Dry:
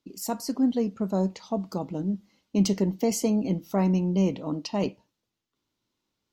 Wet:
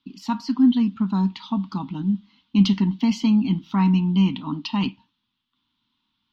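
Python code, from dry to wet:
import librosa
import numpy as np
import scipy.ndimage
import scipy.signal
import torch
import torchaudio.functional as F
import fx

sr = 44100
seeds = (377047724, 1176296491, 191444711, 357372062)

y = fx.curve_eq(x, sr, hz=(140.0, 250.0, 540.0, 940.0, 2100.0, 3400.0, 8900.0), db=(0, 7, -27, 7, 2, 13, -26))
y = y * librosa.db_to_amplitude(2.0)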